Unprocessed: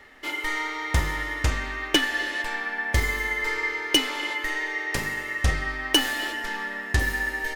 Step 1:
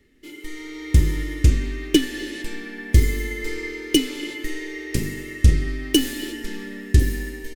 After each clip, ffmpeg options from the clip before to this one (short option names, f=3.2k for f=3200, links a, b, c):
-af "firequalizer=gain_entry='entry(350,0);entry(700,-26);entry(1100,-25);entry(2300,-13);entry(8200,-6)':delay=0.05:min_phase=1,dynaudnorm=f=290:g=5:m=11.5dB"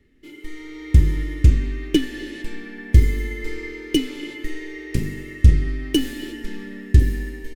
-af "bass=f=250:g=5,treble=f=4k:g=-6,volume=-2.5dB"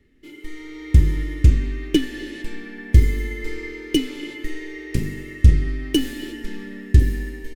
-af anull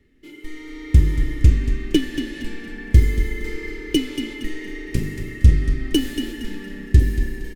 -filter_complex "[0:a]asplit=5[a][b][c][d][e];[b]adelay=232,afreqshift=-30,volume=-9dB[f];[c]adelay=464,afreqshift=-60,volume=-17.6dB[g];[d]adelay=696,afreqshift=-90,volume=-26.3dB[h];[e]adelay=928,afreqshift=-120,volume=-34.9dB[i];[a][f][g][h][i]amix=inputs=5:normalize=0"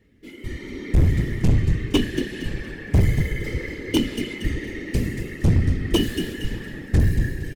-filter_complex "[0:a]asplit=2[a][b];[b]adelay=19,volume=-8dB[c];[a][c]amix=inputs=2:normalize=0,afftfilt=real='hypot(re,im)*cos(2*PI*random(0))':imag='hypot(re,im)*sin(2*PI*random(1))':win_size=512:overlap=0.75,asoftclip=type=hard:threshold=-18dB,volume=6dB"